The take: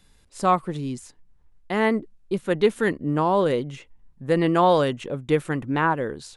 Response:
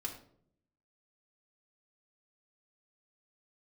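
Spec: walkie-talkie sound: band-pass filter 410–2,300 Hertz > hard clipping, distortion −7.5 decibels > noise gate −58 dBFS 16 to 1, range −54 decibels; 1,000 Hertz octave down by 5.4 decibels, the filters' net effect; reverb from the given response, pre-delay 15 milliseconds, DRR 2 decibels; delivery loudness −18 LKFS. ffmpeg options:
-filter_complex "[0:a]equalizer=frequency=1000:width_type=o:gain=-6.5,asplit=2[link_01][link_02];[1:a]atrim=start_sample=2205,adelay=15[link_03];[link_02][link_03]afir=irnorm=-1:irlink=0,volume=-2dB[link_04];[link_01][link_04]amix=inputs=2:normalize=0,highpass=410,lowpass=2300,asoftclip=type=hard:threshold=-23dB,agate=range=-54dB:threshold=-58dB:ratio=16,volume=11dB"

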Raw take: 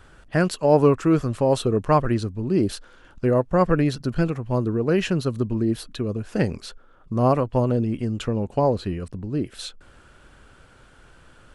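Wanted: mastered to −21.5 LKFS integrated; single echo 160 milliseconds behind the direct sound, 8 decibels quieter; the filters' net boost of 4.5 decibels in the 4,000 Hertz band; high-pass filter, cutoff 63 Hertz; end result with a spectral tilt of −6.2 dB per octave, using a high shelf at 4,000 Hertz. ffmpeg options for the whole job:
ffmpeg -i in.wav -af "highpass=63,highshelf=frequency=4000:gain=-3,equalizer=frequency=4000:width_type=o:gain=7,aecho=1:1:160:0.398,volume=1dB" out.wav

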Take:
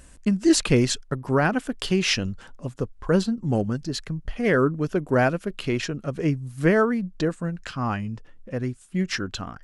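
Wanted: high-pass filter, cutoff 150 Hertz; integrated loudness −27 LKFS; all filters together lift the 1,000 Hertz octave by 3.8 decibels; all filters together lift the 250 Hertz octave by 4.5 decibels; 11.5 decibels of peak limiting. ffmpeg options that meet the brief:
ffmpeg -i in.wav -af "highpass=150,equalizer=frequency=250:width_type=o:gain=6.5,equalizer=frequency=1000:width_type=o:gain=5,volume=-1dB,alimiter=limit=-15.5dB:level=0:latency=1" out.wav

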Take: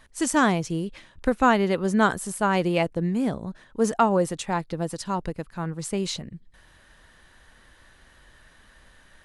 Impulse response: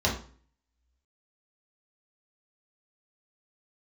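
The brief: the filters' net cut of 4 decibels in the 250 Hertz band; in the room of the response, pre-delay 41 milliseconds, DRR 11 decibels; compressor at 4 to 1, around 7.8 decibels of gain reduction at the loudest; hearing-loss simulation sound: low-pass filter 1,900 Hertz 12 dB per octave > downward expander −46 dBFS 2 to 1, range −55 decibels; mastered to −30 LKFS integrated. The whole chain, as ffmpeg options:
-filter_complex "[0:a]equalizer=frequency=250:width_type=o:gain=-5.5,acompressor=threshold=-24dB:ratio=4,asplit=2[link_01][link_02];[1:a]atrim=start_sample=2205,adelay=41[link_03];[link_02][link_03]afir=irnorm=-1:irlink=0,volume=-23dB[link_04];[link_01][link_04]amix=inputs=2:normalize=0,lowpass=1900,agate=range=-55dB:threshold=-46dB:ratio=2,volume=0.5dB"

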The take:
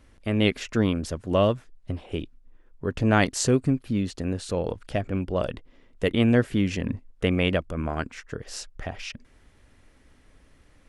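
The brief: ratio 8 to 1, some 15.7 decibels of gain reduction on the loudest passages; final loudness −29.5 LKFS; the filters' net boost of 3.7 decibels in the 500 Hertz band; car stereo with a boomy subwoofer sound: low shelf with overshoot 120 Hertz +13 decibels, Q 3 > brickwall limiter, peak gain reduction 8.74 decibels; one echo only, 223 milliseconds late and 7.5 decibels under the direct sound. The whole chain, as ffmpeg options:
ffmpeg -i in.wav -af "equalizer=frequency=500:width_type=o:gain=5.5,acompressor=threshold=-30dB:ratio=8,lowshelf=frequency=120:width_type=q:width=3:gain=13,aecho=1:1:223:0.422,volume=1.5dB,alimiter=limit=-19.5dB:level=0:latency=1" out.wav

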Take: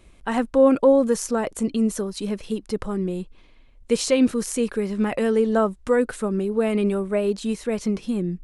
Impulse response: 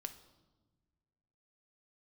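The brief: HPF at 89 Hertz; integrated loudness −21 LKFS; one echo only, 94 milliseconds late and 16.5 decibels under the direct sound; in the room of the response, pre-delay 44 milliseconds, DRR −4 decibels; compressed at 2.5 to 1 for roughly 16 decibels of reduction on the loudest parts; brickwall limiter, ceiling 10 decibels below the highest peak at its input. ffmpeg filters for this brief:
-filter_complex "[0:a]highpass=89,acompressor=threshold=-37dB:ratio=2.5,alimiter=level_in=5.5dB:limit=-24dB:level=0:latency=1,volume=-5.5dB,aecho=1:1:94:0.15,asplit=2[link_01][link_02];[1:a]atrim=start_sample=2205,adelay=44[link_03];[link_02][link_03]afir=irnorm=-1:irlink=0,volume=7dB[link_04];[link_01][link_04]amix=inputs=2:normalize=0,volume=11dB"

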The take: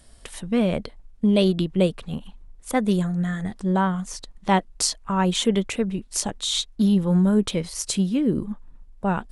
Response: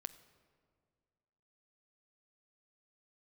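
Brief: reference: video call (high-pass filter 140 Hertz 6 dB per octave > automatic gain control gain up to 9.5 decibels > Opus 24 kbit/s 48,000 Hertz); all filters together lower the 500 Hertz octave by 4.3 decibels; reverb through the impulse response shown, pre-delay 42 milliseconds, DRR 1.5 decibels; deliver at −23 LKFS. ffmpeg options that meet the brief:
-filter_complex "[0:a]equalizer=frequency=500:width_type=o:gain=-5,asplit=2[link_01][link_02];[1:a]atrim=start_sample=2205,adelay=42[link_03];[link_02][link_03]afir=irnorm=-1:irlink=0,volume=2dB[link_04];[link_01][link_04]amix=inputs=2:normalize=0,highpass=frequency=140:poles=1,dynaudnorm=maxgain=9.5dB,volume=1dB" -ar 48000 -c:a libopus -b:a 24k

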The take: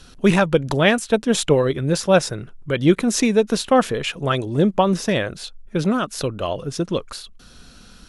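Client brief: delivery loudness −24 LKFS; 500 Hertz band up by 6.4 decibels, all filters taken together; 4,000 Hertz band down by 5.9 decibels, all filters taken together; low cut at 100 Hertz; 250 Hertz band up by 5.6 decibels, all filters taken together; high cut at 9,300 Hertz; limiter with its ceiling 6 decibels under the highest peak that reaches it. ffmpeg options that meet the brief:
ffmpeg -i in.wav -af "highpass=100,lowpass=9300,equalizer=frequency=250:width_type=o:gain=6,equalizer=frequency=500:width_type=o:gain=6,equalizer=frequency=4000:width_type=o:gain=-8,volume=-7.5dB,alimiter=limit=-11dB:level=0:latency=1" out.wav

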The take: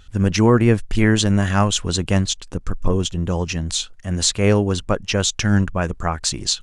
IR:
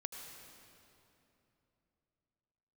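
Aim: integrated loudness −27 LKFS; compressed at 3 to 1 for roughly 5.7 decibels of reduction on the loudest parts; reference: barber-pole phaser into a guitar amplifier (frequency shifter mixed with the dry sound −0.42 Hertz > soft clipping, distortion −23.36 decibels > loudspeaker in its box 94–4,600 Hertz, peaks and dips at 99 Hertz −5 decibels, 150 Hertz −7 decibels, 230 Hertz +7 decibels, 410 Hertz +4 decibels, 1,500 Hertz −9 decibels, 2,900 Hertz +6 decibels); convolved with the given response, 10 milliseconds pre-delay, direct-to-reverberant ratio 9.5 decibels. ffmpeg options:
-filter_complex "[0:a]acompressor=threshold=-17dB:ratio=3,asplit=2[link_01][link_02];[1:a]atrim=start_sample=2205,adelay=10[link_03];[link_02][link_03]afir=irnorm=-1:irlink=0,volume=-7.5dB[link_04];[link_01][link_04]amix=inputs=2:normalize=0,asplit=2[link_05][link_06];[link_06]afreqshift=-0.42[link_07];[link_05][link_07]amix=inputs=2:normalize=1,asoftclip=threshold=-11dB,highpass=94,equalizer=frequency=99:width_type=q:width=4:gain=-5,equalizer=frequency=150:width_type=q:width=4:gain=-7,equalizer=frequency=230:width_type=q:width=4:gain=7,equalizer=frequency=410:width_type=q:width=4:gain=4,equalizer=frequency=1500:width_type=q:width=4:gain=-9,equalizer=frequency=2900:width_type=q:width=4:gain=6,lowpass=frequency=4600:width=0.5412,lowpass=frequency=4600:width=1.3066,volume=-2.5dB"

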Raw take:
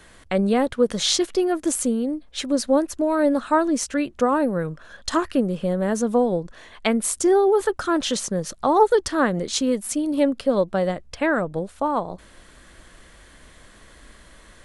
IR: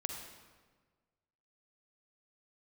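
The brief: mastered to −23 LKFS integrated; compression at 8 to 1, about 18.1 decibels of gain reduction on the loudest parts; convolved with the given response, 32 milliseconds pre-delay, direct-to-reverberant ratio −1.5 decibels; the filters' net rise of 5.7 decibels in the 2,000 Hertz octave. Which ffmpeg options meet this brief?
-filter_complex "[0:a]equalizer=frequency=2000:width_type=o:gain=7.5,acompressor=threshold=-29dB:ratio=8,asplit=2[link_01][link_02];[1:a]atrim=start_sample=2205,adelay=32[link_03];[link_02][link_03]afir=irnorm=-1:irlink=0,volume=1dB[link_04];[link_01][link_04]amix=inputs=2:normalize=0,volume=6dB"

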